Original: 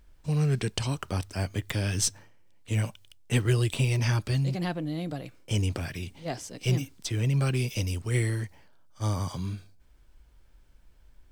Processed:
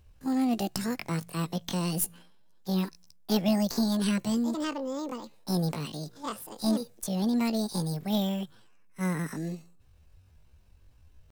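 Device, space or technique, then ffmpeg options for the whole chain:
chipmunk voice: -af "asetrate=76340,aresample=44100,atempo=0.577676,volume=-1.5dB"

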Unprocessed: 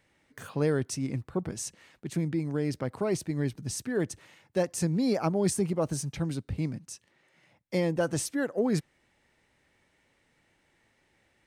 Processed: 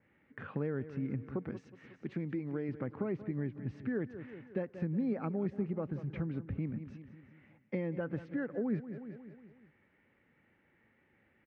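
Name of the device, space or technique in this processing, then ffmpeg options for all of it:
bass amplifier: -filter_complex "[0:a]asettb=1/sr,asplit=3[link_01][link_02][link_03];[link_01]atrim=end=1.314[link_04];[link_02]atrim=start=1.31:end=2.69,asetpts=PTS-STARTPTS,afade=type=in:duration=0.004:curve=qsin,afade=type=out:start_time=1.376:duration=0.004:curve=qsin,bass=frequency=250:gain=-6,treble=frequency=4000:gain=10[link_05];[link_03]atrim=start=2.686[link_06];[link_04][link_05]acrossfade=duration=0.004:curve1=hsin:curve2=qsin[link_07];[link_07][link_06]acrossfade=duration=0.004:curve1=qsin:curve2=hsin,aecho=1:1:182|364|546|728|910:0.158|0.084|0.0445|0.0236|0.0125,acompressor=threshold=-35dB:ratio=3,highpass=67,equalizer=frequency=220:width_type=q:width=4:gain=5,equalizer=frequency=670:width_type=q:width=4:gain=-6,equalizer=frequency=970:width_type=q:width=4:gain=-5,lowpass=frequency=2300:width=0.5412,lowpass=frequency=2300:width=1.3066,adynamicequalizer=threshold=0.00158:dfrequency=2500:dqfactor=0.7:tfrequency=2500:tqfactor=0.7:attack=5:release=100:ratio=0.375:range=1.5:mode=cutabove:tftype=highshelf"

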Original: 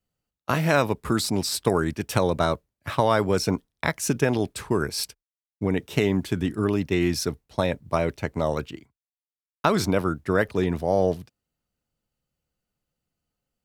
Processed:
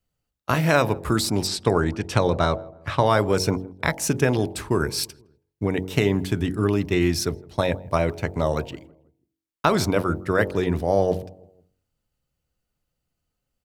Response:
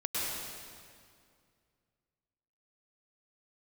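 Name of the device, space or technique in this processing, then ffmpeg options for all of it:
low shelf boost with a cut just above: -filter_complex "[0:a]asettb=1/sr,asplit=3[link_01][link_02][link_03];[link_01]atrim=end=1.474[link_04];[link_02]atrim=start=1.47:end=3.06,asetpts=PTS-STARTPTS,afade=type=in:duration=0.004:curve=qsin,afade=type=out:start_time=1.586:duration=0.004:curve=qsin,lowpass=6700[link_05];[link_03]atrim=start=3.056[link_06];[link_04][link_05]acrossfade=duration=0.004:curve1=hsin:curve2=qsin[link_07];[link_07][link_06]acrossfade=duration=0.004:curve1=qsin:curve2=hsin,lowshelf=frequency=110:gain=6,equalizer=frequency=200:width_type=o:width=0.6:gain=-3,asplit=2[link_08][link_09];[link_09]adelay=162,lowpass=frequency=920:poles=1,volume=-22dB,asplit=2[link_10][link_11];[link_11]adelay=162,lowpass=frequency=920:poles=1,volume=0.5,asplit=2[link_12][link_13];[link_13]adelay=162,lowpass=frequency=920:poles=1,volume=0.5[link_14];[link_08][link_10][link_12][link_14]amix=inputs=4:normalize=0,bandreject=frequency=46.62:width_type=h:width=4,bandreject=frequency=93.24:width_type=h:width=4,bandreject=frequency=139.86:width_type=h:width=4,bandreject=frequency=186.48:width_type=h:width=4,bandreject=frequency=233.1:width_type=h:width=4,bandreject=frequency=279.72:width_type=h:width=4,bandreject=frequency=326.34:width_type=h:width=4,bandreject=frequency=372.96:width_type=h:width=4,bandreject=frequency=419.58:width_type=h:width=4,bandreject=frequency=466.2:width_type=h:width=4,bandreject=frequency=512.82:width_type=h:width=4,bandreject=frequency=559.44:width_type=h:width=4,bandreject=frequency=606.06:width_type=h:width=4,bandreject=frequency=652.68:width_type=h:width=4,bandreject=frequency=699.3:width_type=h:width=4,bandreject=frequency=745.92:width_type=h:width=4,bandreject=frequency=792.54:width_type=h:width=4,bandreject=frequency=839.16:width_type=h:width=4,bandreject=frequency=885.78:width_type=h:width=4,bandreject=frequency=932.4:width_type=h:width=4,volume=2dB"

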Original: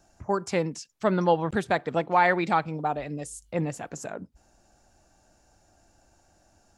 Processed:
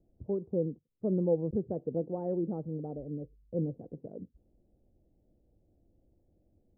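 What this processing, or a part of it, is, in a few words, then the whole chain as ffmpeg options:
under water: -af "lowpass=frequency=430:width=0.5412,lowpass=frequency=430:width=1.3066,equalizer=frequency=500:width_type=o:width=0.37:gain=6.5,volume=-3.5dB"

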